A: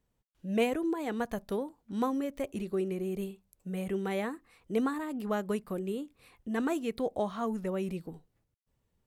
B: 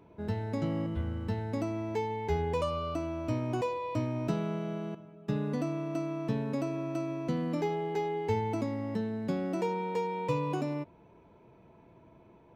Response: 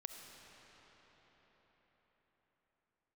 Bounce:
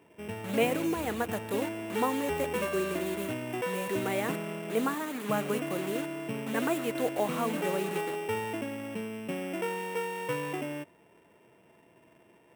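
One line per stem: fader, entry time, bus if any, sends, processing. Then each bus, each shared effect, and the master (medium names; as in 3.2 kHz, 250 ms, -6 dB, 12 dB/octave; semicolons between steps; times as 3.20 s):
+2.0 dB, 0.00 s, send -7 dB, bit crusher 7-bit
+2.5 dB, 0.00 s, no send, sorted samples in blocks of 16 samples; treble shelf 2.2 kHz -7.5 dB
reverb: on, RT60 5.4 s, pre-delay 25 ms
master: high-pass 430 Hz 6 dB/octave; peaking EQ 5.1 kHz -11 dB 0.61 oct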